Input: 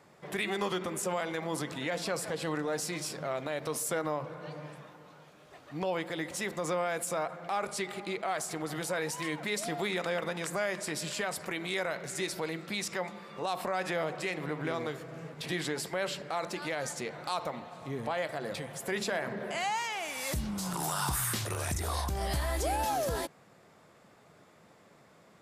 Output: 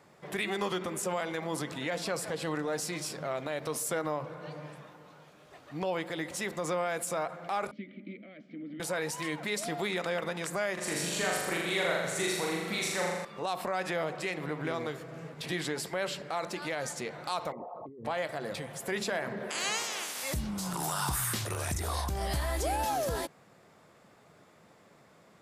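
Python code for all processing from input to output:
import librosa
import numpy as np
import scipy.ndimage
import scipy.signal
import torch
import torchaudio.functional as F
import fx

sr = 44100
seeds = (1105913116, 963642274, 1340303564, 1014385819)

y = fx.chain(x, sr, fx.vowel_filter(vowel='i'),
    fx.air_absorb(metres=280.0),
    fx.small_body(hz=(220.0, 550.0), ring_ms=40, db=17), at=(7.71, 8.8))
y = fx.chain(y, sr, fx.notch(hz=5000.0, q=11.0),
    fx.room_flutter(wall_m=7.0, rt60_s=1.2), at=(10.73, 13.25))
y = fx.chain(y, sr, fx.envelope_sharpen(power=3.0),
    fx.over_compress(threshold_db=-44.0, ratio=-1.0), at=(17.52, 18.05))
y = fx.spec_clip(y, sr, under_db=24, at=(19.49, 20.22), fade=0.02)
y = fx.highpass(y, sr, hz=240.0, slope=12, at=(19.49, 20.22), fade=0.02)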